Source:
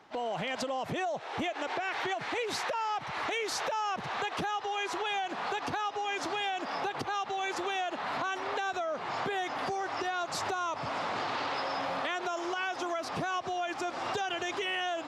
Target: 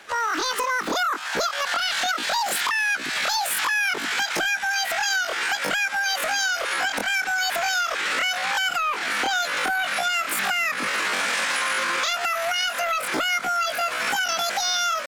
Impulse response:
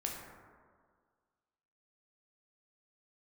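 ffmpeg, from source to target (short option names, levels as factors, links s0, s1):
-filter_complex "[0:a]asplit=2[s0][s1];[s1]asoftclip=type=tanh:threshold=0.015,volume=0.447[s2];[s0][s2]amix=inputs=2:normalize=0,asetrate=85689,aresample=44100,atempo=0.514651,volume=2.51"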